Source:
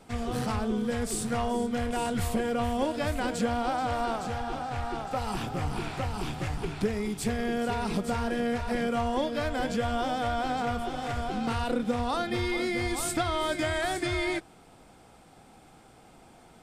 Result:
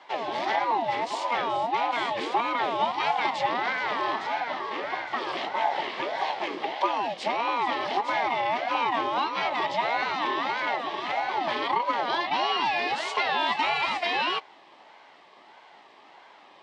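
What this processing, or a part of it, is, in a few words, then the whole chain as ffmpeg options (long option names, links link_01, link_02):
voice changer toy: -af "aeval=exprs='val(0)*sin(2*PI*560*n/s+560*0.4/1.6*sin(2*PI*1.6*n/s))':channel_layout=same,highpass=460,equalizer=frequency=490:width_type=q:width=4:gain=-8,equalizer=frequency=870:width_type=q:width=4:gain=5,equalizer=frequency=1400:width_type=q:width=4:gain=-8,equalizer=frequency=2100:width_type=q:width=4:gain=5,equalizer=frequency=3300:width_type=q:width=4:gain=4,lowpass=frequency=4800:width=0.5412,lowpass=frequency=4800:width=1.3066,volume=7dB"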